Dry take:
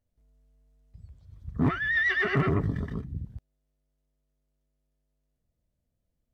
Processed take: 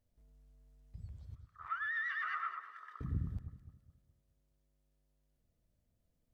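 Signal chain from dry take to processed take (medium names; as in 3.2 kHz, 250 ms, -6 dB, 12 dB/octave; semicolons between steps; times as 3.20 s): compression 6:1, threshold -29 dBFS, peak gain reduction 9.5 dB; 1.35–3.01 s: ladder high-pass 1.2 kHz, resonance 80%; echo whose repeats swap between lows and highs 105 ms, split 1.7 kHz, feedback 62%, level -8 dB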